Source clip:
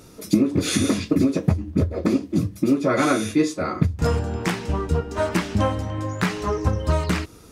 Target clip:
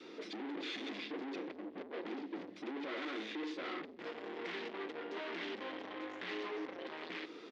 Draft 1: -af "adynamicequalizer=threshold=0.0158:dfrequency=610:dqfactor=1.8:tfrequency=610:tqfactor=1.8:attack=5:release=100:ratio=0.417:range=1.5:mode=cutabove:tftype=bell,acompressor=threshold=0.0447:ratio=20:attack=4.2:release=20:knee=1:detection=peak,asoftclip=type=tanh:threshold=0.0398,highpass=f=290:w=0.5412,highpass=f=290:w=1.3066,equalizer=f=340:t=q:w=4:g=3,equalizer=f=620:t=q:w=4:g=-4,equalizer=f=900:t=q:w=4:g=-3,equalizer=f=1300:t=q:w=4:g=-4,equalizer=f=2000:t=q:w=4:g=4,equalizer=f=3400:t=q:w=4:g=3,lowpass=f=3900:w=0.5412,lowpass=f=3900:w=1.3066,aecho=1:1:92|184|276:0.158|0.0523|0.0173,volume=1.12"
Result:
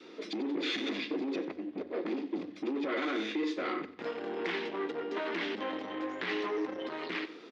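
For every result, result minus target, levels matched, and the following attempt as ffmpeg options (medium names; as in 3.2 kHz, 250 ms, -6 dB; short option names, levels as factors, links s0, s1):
echo-to-direct +11.5 dB; saturation: distortion -8 dB
-af "adynamicequalizer=threshold=0.0158:dfrequency=610:dqfactor=1.8:tfrequency=610:tqfactor=1.8:attack=5:release=100:ratio=0.417:range=1.5:mode=cutabove:tftype=bell,acompressor=threshold=0.0447:ratio=20:attack=4.2:release=20:knee=1:detection=peak,asoftclip=type=tanh:threshold=0.0398,highpass=f=290:w=0.5412,highpass=f=290:w=1.3066,equalizer=f=340:t=q:w=4:g=3,equalizer=f=620:t=q:w=4:g=-4,equalizer=f=900:t=q:w=4:g=-3,equalizer=f=1300:t=q:w=4:g=-4,equalizer=f=2000:t=q:w=4:g=4,equalizer=f=3400:t=q:w=4:g=3,lowpass=f=3900:w=0.5412,lowpass=f=3900:w=1.3066,aecho=1:1:92|184:0.0422|0.0139,volume=1.12"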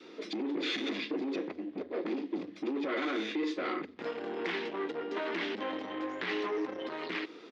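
saturation: distortion -8 dB
-af "adynamicequalizer=threshold=0.0158:dfrequency=610:dqfactor=1.8:tfrequency=610:tqfactor=1.8:attack=5:release=100:ratio=0.417:range=1.5:mode=cutabove:tftype=bell,acompressor=threshold=0.0447:ratio=20:attack=4.2:release=20:knee=1:detection=peak,asoftclip=type=tanh:threshold=0.0106,highpass=f=290:w=0.5412,highpass=f=290:w=1.3066,equalizer=f=340:t=q:w=4:g=3,equalizer=f=620:t=q:w=4:g=-4,equalizer=f=900:t=q:w=4:g=-3,equalizer=f=1300:t=q:w=4:g=-4,equalizer=f=2000:t=q:w=4:g=4,equalizer=f=3400:t=q:w=4:g=3,lowpass=f=3900:w=0.5412,lowpass=f=3900:w=1.3066,aecho=1:1:92|184:0.0422|0.0139,volume=1.12"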